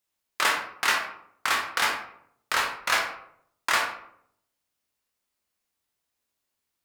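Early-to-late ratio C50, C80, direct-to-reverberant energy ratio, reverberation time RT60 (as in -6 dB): 5.5 dB, 9.5 dB, 0.5 dB, 0.70 s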